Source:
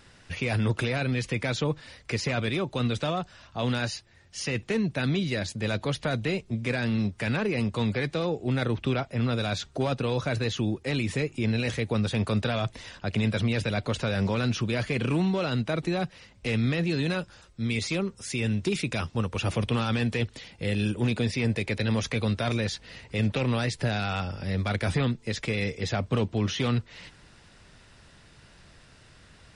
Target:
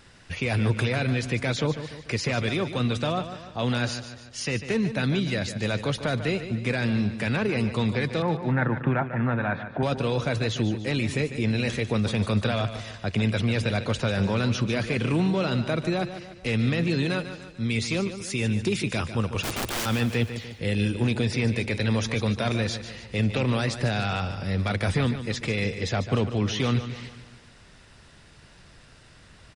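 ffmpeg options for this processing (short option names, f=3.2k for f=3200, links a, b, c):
-filter_complex "[0:a]asettb=1/sr,asplit=3[a][b][c];[a]atrim=end=8.224[d];[b]atrim=start=8.22:end=9.83,asetpts=PTS-STARTPTS,afade=t=in:d=0.004:c=qsin,afade=t=out:st=1.606:d=0.004:c=qsin,highpass=120,equalizer=f=150:t=q:w=4:g=8,equalizer=f=440:t=q:w=4:g=-5,equalizer=f=900:t=q:w=4:g=9,equalizer=f=1.7k:t=q:w=4:g=10,lowpass=f=2.1k:w=0.5412,lowpass=f=2.1k:w=1.3066[e];[c]atrim=start=9.826[f];[d][e]acrossfade=d=0.004:c1=hsin:c2=qsin[g];[g][f]acrossfade=d=0.004:c1=qsin:c2=hsin,asettb=1/sr,asplit=3[h][i][j];[h]atrim=end=19.434[k];[i]atrim=start=19.43:end=19.86,asetpts=PTS-STARTPTS,afade=t=in:d=0.004:c=qsin,afade=t=out:st=0.426:d=0.004:c=qsin,aeval=exprs='(mod(20*val(0)+1,2)-1)/20':c=same[l];[j]atrim=start=19.856[m];[k][l]acrossfade=d=0.004:c1=hsin:c2=qsin[n];[n][m]acrossfade=d=0.004:c1=qsin:c2=hsin,aecho=1:1:147|294|441|588|735:0.282|0.135|0.0649|0.0312|0.015,volume=1.5dB"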